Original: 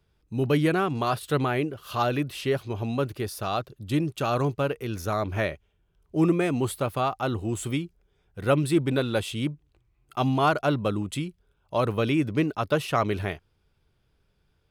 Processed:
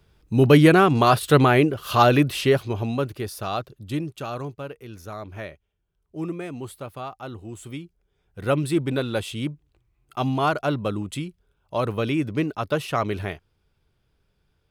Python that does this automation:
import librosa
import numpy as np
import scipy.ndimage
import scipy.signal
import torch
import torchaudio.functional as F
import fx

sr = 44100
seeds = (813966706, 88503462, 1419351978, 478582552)

y = fx.gain(x, sr, db=fx.line((2.3, 9.0), (3.11, 0.5), (3.69, 0.5), (4.57, -8.5), (7.62, -8.5), (8.4, 0.0)))